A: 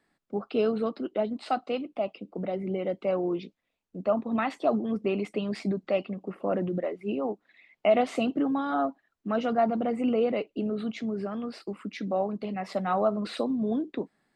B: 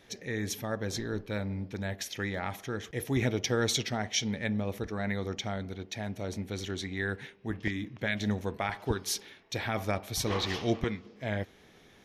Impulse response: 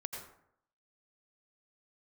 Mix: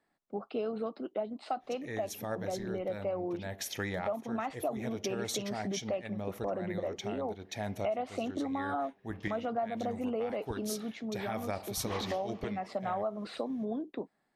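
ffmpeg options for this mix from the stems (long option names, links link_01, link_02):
-filter_complex "[0:a]volume=-7.5dB,asplit=2[link_01][link_02];[1:a]adynamicequalizer=threshold=0.00316:dfrequency=6900:dqfactor=0.7:tfrequency=6900:tqfactor=0.7:attack=5:release=100:ratio=0.375:range=4:mode=boostabove:tftype=highshelf,adelay=1600,volume=-1dB[link_03];[link_02]apad=whole_len=601797[link_04];[link_03][link_04]sidechaincompress=threshold=-45dB:ratio=3:attack=16:release=432[link_05];[link_01][link_05]amix=inputs=2:normalize=0,equalizer=frequency=740:width=1.1:gain=6,acompressor=threshold=-30dB:ratio=6"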